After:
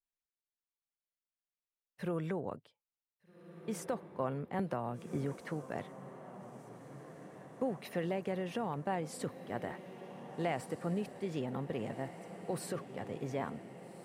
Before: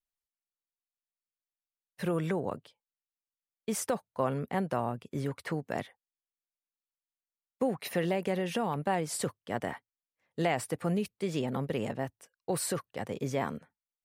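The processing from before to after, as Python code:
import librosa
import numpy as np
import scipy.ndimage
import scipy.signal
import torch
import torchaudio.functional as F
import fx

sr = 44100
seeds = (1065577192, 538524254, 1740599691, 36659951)

y = fx.high_shelf(x, sr, hz=3300.0, db=-7.5)
y = fx.echo_diffused(y, sr, ms=1639, feedback_pct=65, wet_db=-12.0)
y = fx.band_squash(y, sr, depth_pct=100, at=(4.59, 5.36))
y = y * librosa.db_to_amplitude(-5.5)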